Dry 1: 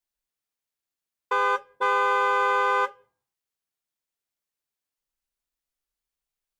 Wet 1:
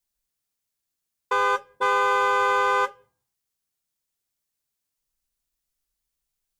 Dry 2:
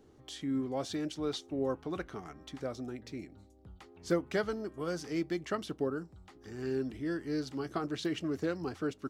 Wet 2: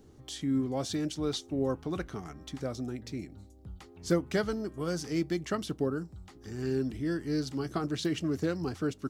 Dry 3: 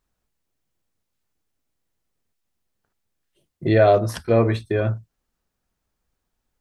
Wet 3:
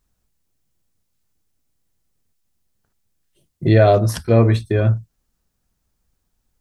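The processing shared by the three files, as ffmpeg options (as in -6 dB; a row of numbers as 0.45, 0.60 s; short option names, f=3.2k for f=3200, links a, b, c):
-af "bass=f=250:g=7,treble=f=4k:g=6,volume=1dB"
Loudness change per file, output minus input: +1.0, +3.0, +3.5 LU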